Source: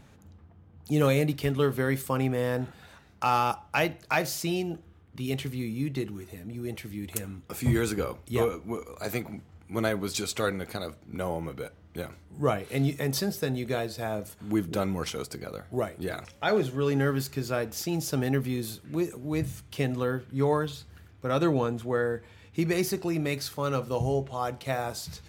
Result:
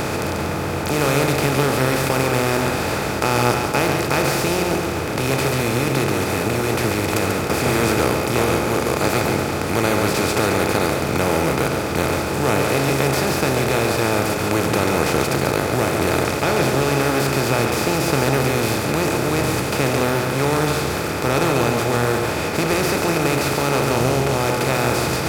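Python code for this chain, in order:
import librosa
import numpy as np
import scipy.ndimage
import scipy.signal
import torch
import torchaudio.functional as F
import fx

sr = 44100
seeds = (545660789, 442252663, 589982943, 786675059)

p1 = fx.bin_compress(x, sr, power=0.2)
p2 = p1 + fx.echo_single(p1, sr, ms=140, db=-5.5, dry=0)
y = p2 * librosa.db_to_amplitude(-2.0)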